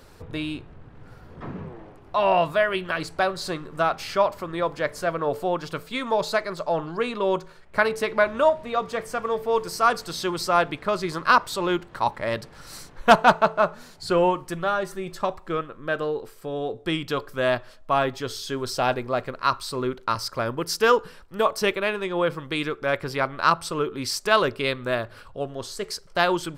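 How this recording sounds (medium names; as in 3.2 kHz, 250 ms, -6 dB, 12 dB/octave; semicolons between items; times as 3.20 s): noise floor -48 dBFS; spectral tilt -4.0 dB/octave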